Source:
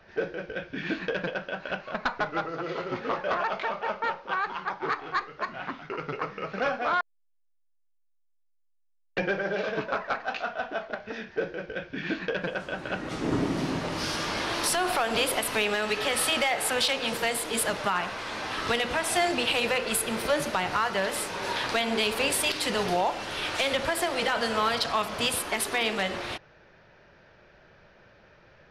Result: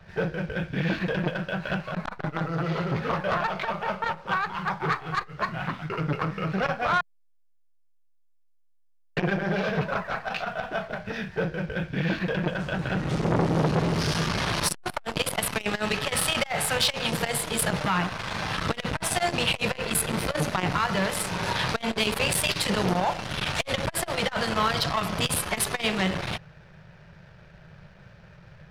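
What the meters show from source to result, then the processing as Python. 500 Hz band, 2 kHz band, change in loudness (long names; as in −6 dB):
−0.5 dB, +0.5 dB, +1.5 dB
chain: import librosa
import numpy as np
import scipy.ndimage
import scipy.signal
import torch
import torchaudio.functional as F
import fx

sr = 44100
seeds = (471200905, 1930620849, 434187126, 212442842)

y = fx.leveller(x, sr, passes=1)
y = fx.low_shelf_res(y, sr, hz=210.0, db=8.0, q=3.0)
y = fx.transformer_sat(y, sr, knee_hz=800.0)
y = y * librosa.db_to_amplitude(1.5)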